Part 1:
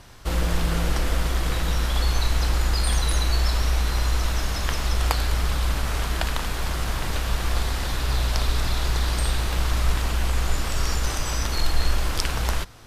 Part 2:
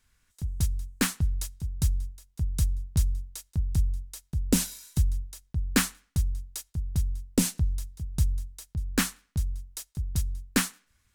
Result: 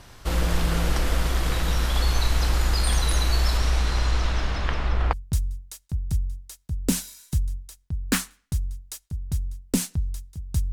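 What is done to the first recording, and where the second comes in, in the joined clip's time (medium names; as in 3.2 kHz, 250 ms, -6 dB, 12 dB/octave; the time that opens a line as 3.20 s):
part 1
3.57–5.13 s: low-pass 11 kHz -> 1.8 kHz
5.13 s: go over to part 2 from 2.77 s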